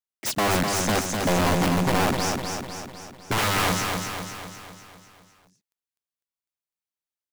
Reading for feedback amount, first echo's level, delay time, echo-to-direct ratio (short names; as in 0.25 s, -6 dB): 55%, -4.5 dB, 0.251 s, -3.0 dB